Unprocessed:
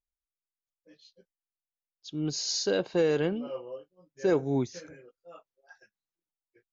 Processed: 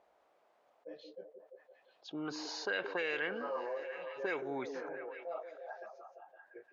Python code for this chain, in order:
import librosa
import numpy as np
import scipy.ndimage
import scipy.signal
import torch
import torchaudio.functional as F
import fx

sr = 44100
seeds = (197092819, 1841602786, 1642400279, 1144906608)

p1 = fx.highpass(x, sr, hz=210.0, slope=6)
p2 = fx.high_shelf(p1, sr, hz=4400.0, db=-11.0)
p3 = fx.auto_wah(p2, sr, base_hz=650.0, top_hz=2300.0, q=2.9, full_db=-22.5, direction='up')
p4 = p3 + fx.echo_stepped(p3, sr, ms=172, hz=340.0, octaves=0.7, feedback_pct=70, wet_db=-10, dry=0)
p5 = fx.env_flatten(p4, sr, amount_pct=50)
y = F.gain(torch.from_numpy(p5), 7.5).numpy()